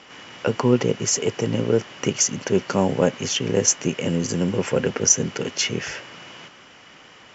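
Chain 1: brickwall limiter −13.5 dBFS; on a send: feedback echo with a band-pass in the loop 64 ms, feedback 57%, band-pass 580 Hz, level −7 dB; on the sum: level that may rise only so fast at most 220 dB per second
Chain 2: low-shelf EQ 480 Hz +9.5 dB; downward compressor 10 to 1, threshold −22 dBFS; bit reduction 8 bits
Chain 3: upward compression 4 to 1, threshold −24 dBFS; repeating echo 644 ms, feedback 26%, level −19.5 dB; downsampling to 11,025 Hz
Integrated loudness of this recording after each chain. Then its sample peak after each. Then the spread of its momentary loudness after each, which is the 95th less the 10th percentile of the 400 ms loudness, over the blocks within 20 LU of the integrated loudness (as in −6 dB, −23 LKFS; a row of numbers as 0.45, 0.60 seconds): −25.5, −27.5, −24.5 LKFS; −11.0, −10.0, −4.5 dBFS; 13, 13, 10 LU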